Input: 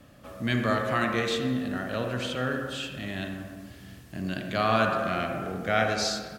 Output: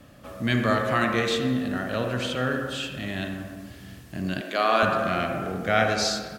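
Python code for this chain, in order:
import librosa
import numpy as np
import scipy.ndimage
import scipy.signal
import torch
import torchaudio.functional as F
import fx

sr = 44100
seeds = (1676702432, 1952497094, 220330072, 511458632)

y = fx.highpass(x, sr, hz=280.0, slope=24, at=(4.41, 4.83))
y = y * librosa.db_to_amplitude(3.0)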